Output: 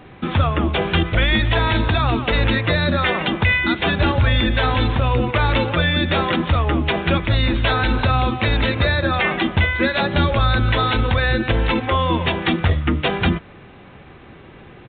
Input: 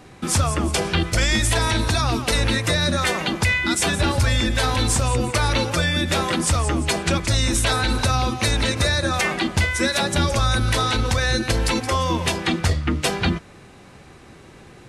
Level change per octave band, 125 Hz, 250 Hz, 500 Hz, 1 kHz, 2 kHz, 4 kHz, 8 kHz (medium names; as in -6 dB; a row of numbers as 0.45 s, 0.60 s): +3.0 dB, +3.0 dB, +3.0 dB, +3.0 dB, +3.0 dB, -0.5 dB, under -40 dB